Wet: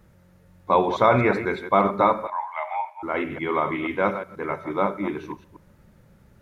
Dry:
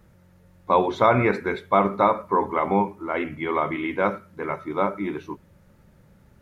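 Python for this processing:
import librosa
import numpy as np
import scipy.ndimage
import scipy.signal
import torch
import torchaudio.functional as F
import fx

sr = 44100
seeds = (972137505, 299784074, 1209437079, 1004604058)

y = fx.reverse_delay(x, sr, ms=121, wet_db=-10)
y = fx.cheby_ripple_highpass(y, sr, hz=600.0, ripple_db=9, at=(2.27, 3.03))
y = fx.rev_schroeder(y, sr, rt60_s=0.5, comb_ms=29, drr_db=19.5)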